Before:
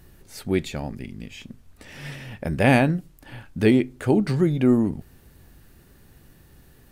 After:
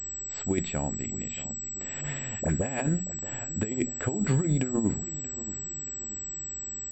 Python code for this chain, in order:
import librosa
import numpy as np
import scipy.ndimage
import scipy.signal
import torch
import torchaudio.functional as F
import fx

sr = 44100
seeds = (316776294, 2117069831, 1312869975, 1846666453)

p1 = fx.hum_notches(x, sr, base_hz=60, count=4)
p2 = fx.dispersion(p1, sr, late='highs', ms=45.0, hz=1300.0, at=(2.01, 2.8))
p3 = fx.over_compress(p2, sr, threshold_db=-22.0, ratio=-0.5)
p4 = p3 + fx.echo_feedback(p3, sr, ms=631, feedback_pct=42, wet_db=-16.0, dry=0)
p5 = fx.pwm(p4, sr, carrier_hz=7800.0)
y = p5 * 10.0 ** (-3.5 / 20.0)